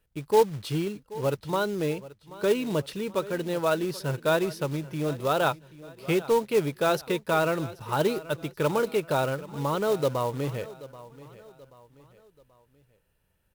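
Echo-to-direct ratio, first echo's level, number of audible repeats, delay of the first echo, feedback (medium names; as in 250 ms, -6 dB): -17.0 dB, -18.0 dB, 3, 782 ms, 41%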